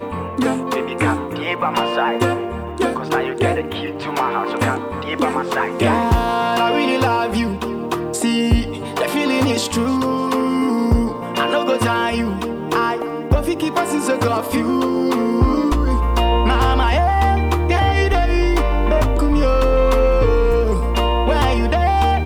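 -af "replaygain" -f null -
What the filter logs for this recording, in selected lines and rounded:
track_gain = +0.9 dB
track_peak = 0.382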